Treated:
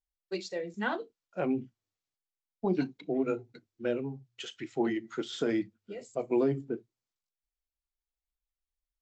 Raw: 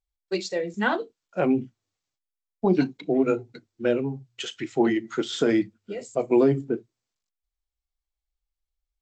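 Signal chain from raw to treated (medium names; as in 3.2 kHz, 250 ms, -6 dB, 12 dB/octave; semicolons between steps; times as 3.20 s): low-pass 8.1 kHz; trim -8 dB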